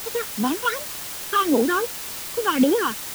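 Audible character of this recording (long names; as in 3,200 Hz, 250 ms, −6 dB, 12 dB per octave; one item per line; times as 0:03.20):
phaser sweep stages 8, 2.7 Hz, lowest notch 610–2,100 Hz
a quantiser's noise floor 6 bits, dither triangular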